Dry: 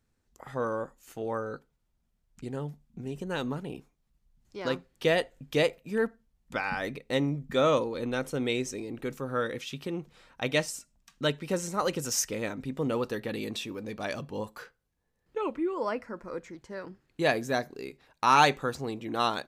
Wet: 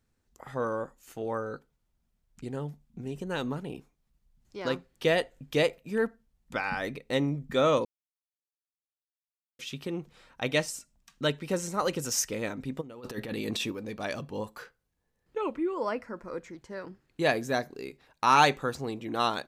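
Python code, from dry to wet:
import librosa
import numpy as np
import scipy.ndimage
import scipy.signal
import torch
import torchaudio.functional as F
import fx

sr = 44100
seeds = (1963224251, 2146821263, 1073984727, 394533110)

y = fx.over_compress(x, sr, threshold_db=-36.0, ratio=-0.5, at=(12.8, 13.7), fade=0.02)
y = fx.edit(y, sr, fx.silence(start_s=7.85, length_s=1.74), tone=tone)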